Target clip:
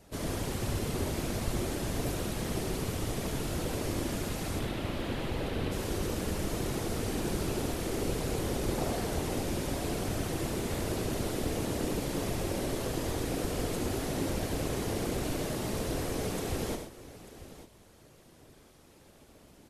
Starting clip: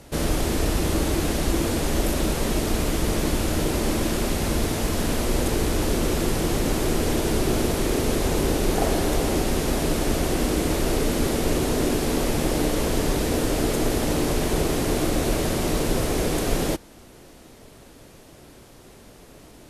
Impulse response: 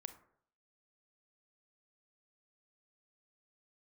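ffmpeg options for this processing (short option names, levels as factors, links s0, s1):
-filter_complex "[0:a]asettb=1/sr,asplit=3[s0][s1][s2];[s0]atrim=end=4.594[s3];[s1]atrim=start=4.59:end=5.72,asetpts=PTS-STARTPTS,afade=t=in:d=0.004:c=qsin,afade=t=out:st=1.126:d=0.004:c=qsin,highshelf=f=4700:t=q:w=1.5:g=-10.5[s4];[s2]atrim=start=5.716[s5];[s3][s4]acrossfade=d=0.004:c1=hsin:c2=qsin[s6];[s6][s5]acrossfade=d=0.004:c1=qsin:c2=hsin,afftfilt=real='hypot(re,im)*cos(2*PI*random(0))':imag='hypot(re,im)*sin(2*PI*random(1))':win_size=512:overlap=0.75,aecho=1:1:74|95|127|892:0.376|0.299|0.251|0.178,volume=0.562"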